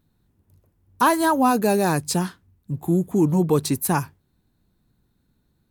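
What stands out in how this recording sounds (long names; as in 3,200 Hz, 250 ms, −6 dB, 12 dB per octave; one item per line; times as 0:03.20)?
background noise floor −69 dBFS
spectral slope −5.5 dB per octave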